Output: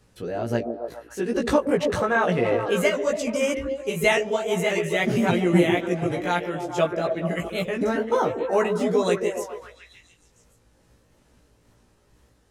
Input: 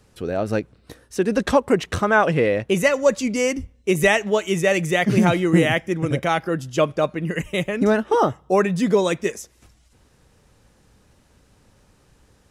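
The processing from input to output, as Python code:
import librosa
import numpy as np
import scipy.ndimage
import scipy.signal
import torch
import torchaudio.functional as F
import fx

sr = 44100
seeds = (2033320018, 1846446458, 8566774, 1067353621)

y = fx.pitch_ramps(x, sr, semitones=1.5, every_ms=588)
y = fx.doubler(y, sr, ms=17.0, db=-3.0)
y = fx.echo_stepped(y, sr, ms=141, hz=330.0, octaves=0.7, feedback_pct=70, wet_db=-2.0)
y = y * librosa.db_to_amplitude(-5.0)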